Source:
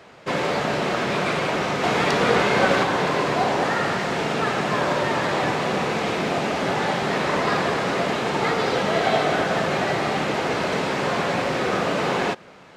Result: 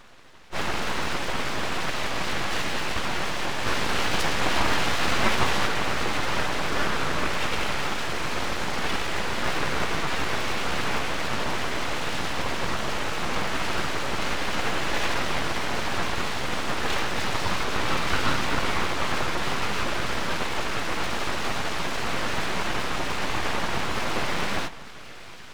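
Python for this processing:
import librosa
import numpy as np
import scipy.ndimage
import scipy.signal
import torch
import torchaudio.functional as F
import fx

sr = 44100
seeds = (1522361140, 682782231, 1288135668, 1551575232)

y = fx.echo_split(x, sr, split_hz=610.0, low_ms=97, high_ms=447, feedback_pct=52, wet_db=-15.5)
y = fx.stretch_vocoder_free(y, sr, factor=2.0)
y = np.abs(y)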